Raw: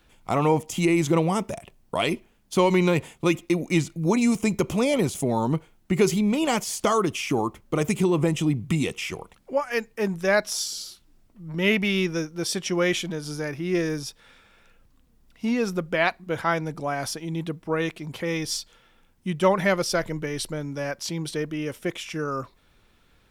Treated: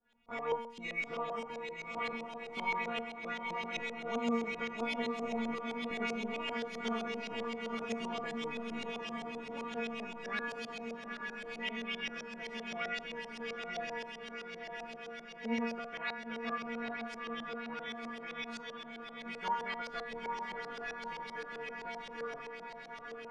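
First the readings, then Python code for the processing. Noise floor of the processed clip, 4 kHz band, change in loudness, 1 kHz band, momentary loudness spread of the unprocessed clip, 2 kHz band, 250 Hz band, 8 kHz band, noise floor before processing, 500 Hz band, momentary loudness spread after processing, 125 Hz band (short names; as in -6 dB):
-49 dBFS, -11.5 dB, -14.0 dB, -9.5 dB, 10 LU, -9.0 dB, -16.5 dB, -23.5 dB, -61 dBFS, -15.0 dB, 8 LU, -28.0 dB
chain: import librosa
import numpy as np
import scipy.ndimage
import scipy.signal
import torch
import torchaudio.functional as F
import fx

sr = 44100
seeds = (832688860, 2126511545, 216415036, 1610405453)

y = fx.spec_clip(x, sr, under_db=16)
y = fx.stiff_resonator(y, sr, f0_hz=230.0, decay_s=0.63, stiffness=0.002)
y = fx.echo_diffused(y, sr, ms=914, feedback_pct=68, wet_db=-4)
y = fx.filter_lfo_lowpass(y, sr, shape='saw_up', hz=7.7, low_hz=560.0, high_hz=4700.0, q=1.5)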